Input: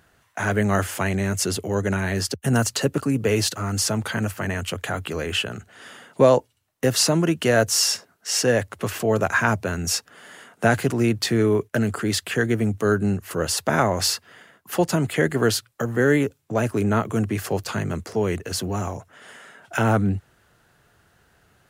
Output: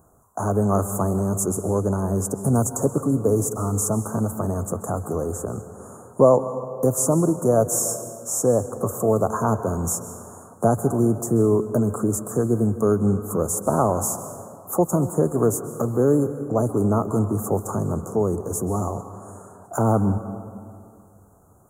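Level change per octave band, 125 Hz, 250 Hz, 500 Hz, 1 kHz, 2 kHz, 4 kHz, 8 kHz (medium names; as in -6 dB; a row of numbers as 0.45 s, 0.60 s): +1.0 dB, +1.5 dB, +1.5 dB, +0.5 dB, -19.0 dB, under -20 dB, 0.0 dB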